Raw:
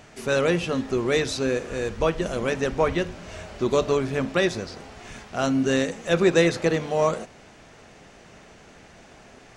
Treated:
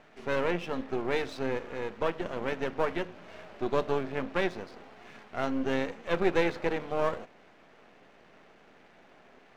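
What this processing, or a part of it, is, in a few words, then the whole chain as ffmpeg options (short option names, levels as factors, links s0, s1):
crystal radio: -af "highpass=210,lowpass=2800,aeval=exprs='if(lt(val(0),0),0.251*val(0),val(0))':c=same,volume=0.668"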